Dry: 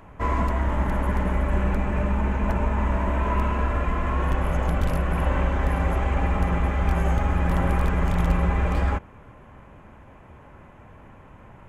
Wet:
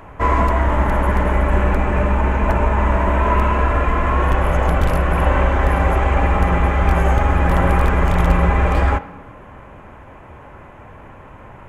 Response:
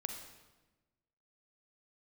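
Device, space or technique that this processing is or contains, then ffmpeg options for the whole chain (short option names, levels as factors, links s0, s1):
filtered reverb send: -filter_complex "[0:a]asplit=2[s0][s1];[s1]highpass=f=180:w=0.5412,highpass=f=180:w=1.3066,lowpass=3300[s2];[1:a]atrim=start_sample=2205[s3];[s2][s3]afir=irnorm=-1:irlink=0,volume=0.501[s4];[s0][s4]amix=inputs=2:normalize=0,volume=2.11"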